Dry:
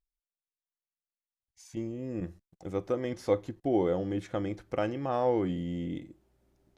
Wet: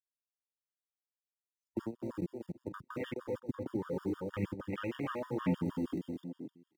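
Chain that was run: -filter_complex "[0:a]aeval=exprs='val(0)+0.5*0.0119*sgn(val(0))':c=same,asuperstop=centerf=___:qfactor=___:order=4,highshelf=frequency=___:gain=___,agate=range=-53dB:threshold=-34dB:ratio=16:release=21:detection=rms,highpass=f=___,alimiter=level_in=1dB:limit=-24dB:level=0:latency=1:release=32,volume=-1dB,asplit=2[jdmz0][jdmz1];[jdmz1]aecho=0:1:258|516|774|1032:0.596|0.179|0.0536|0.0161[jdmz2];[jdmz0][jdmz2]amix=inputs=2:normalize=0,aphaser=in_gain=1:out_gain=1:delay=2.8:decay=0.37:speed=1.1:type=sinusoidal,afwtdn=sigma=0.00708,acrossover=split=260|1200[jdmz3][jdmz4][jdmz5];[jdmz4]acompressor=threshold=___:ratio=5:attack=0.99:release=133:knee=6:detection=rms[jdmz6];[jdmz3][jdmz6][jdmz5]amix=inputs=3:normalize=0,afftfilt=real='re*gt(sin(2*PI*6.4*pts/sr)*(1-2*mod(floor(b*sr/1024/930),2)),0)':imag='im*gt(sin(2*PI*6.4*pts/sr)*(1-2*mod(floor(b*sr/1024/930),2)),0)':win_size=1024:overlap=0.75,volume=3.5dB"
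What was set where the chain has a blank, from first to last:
710, 3.8, 2.4k, 7.5, 140, -41dB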